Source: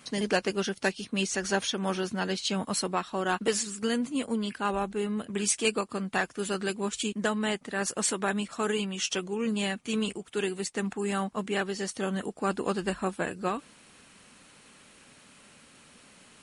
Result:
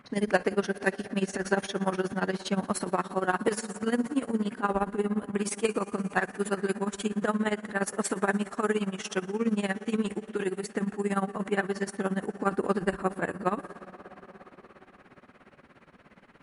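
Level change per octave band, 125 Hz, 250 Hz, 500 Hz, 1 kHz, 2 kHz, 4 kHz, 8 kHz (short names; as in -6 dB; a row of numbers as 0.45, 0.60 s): +1.5, +1.5, +1.5, +1.5, 0.0, -8.5, -7.0 dB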